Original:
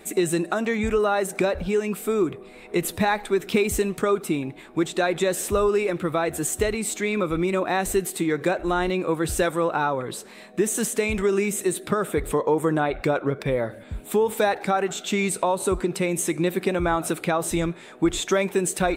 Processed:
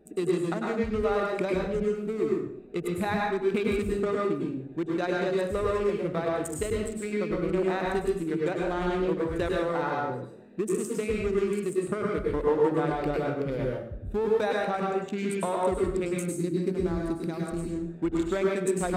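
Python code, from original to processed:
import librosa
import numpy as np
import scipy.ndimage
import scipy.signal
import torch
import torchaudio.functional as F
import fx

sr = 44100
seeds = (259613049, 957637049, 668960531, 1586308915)

y = fx.wiener(x, sr, points=41)
y = fx.spec_box(y, sr, start_s=16.15, length_s=1.55, low_hz=420.0, high_hz=3800.0, gain_db=-9)
y = fx.rev_plate(y, sr, seeds[0], rt60_s=0.63, hf_ratio=0.8, predelay_ms=90, drr_db=-2.5)
y = F.gain(torch.from_numpy(y), -7.0).numpy()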